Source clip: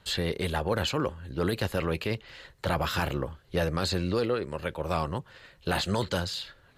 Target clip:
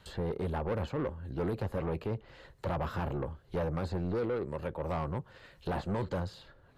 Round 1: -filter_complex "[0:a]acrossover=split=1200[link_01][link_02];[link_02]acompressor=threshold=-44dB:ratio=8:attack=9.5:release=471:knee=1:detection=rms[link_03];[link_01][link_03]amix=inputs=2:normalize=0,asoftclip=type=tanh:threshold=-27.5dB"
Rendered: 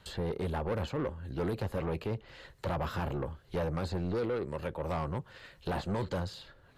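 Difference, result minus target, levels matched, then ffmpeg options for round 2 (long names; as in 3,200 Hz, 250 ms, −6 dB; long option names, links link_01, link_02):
downward compressor: peak gain reduction −5.5 dB
-filter_complex "[0:a]acrossover=split=1200[link_01][link_02];[link_02]acompressor=threshold=-50.5dB:ratio=8:attack=9.5:release=471:knee=1:detection=rms[link_03];[link_01][link_03]amix=inputs=2:normalize=0,asoftclip=type=tanh:threshold=-27.5dB"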